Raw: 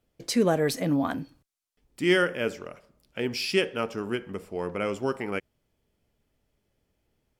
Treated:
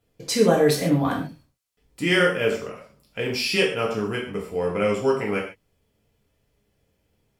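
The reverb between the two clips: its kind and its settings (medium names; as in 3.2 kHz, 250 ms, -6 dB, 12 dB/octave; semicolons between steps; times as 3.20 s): gated-style reverb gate 170 ms falling, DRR -2.5 dB; trim +1 dB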